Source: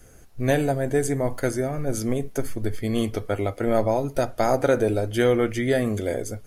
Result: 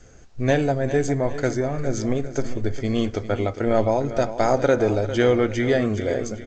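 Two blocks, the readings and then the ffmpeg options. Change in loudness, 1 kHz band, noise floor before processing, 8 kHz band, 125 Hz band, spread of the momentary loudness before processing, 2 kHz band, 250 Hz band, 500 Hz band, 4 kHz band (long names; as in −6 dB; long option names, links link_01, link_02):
+1.5 dB, +2.0 dB, −47 dBFS, −2.0 dB, +2.0 dB, 7 LU, +2.0 dB, +2.0 dB, +1.5 dB, +1.5 dB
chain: -af "aecho=1:1:402|804|1206|1608|2010:0.237|0.109|0.0502|0.0231|0.0106,volume=1.5dB" -ar 16000 -c:a g722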